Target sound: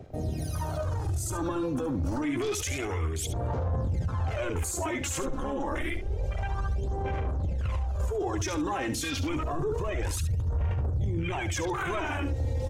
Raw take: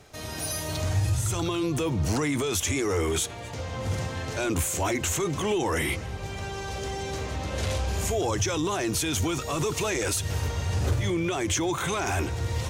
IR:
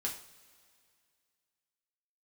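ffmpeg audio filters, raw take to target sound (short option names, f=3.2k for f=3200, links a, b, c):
-filter_complex "[0:a]asettb=1/sr,asplit=3[a][b][c];[a]atrim=end=5.234[d];[b]atrim=start=5.23:end=6.11,asetpts=PTS-STARTPTS,afade=t=in:d=0.004:c=qsin,afade=t=out:st=0.876:d=0.004:c=qsin,tremolo=f=140:d=0.974[e];[c]atrim=start=6.106[f];[d][e]acrossfade=d=0.004:c1=hsin:c2=qsin[g];[g][f]acrossfade=d=0.004:c1=qsin:c2=hsin,aphaser=in_gain=1:out_gain=1:delay=3.8:decay=0.71:speed=0.28:type=sinusoidal,afwtdn=0.0251,asettb=1/sr,asplit=3[h][i][j];[h]atrim=end=9.354[k];[i]atrim=start=9.35:end=10.09,asetpts=PTS-STARTPTS,afade=t=in:d=0.004:c=qsin,afade=t=out:st=0.736:d=0.004:c=qsin,tiltshelf=f=970:g=5.5[l];[j]atrim=start=10.086[m];[k][l]acrossfade=d=0.004:c1=hsin:c2=qsin[n];[n][m]acrossfade=d=0.004:c1=qsin:c2=hsin,bandreject=f=50:t=h:w=6,bandreject=f=100:t=h:w=6,asubboost=boost=3.5:cutoff=87,alimiter=limit=-23.5dB:level=0:latency=1:release=14,aecho=1:1:70:0.299"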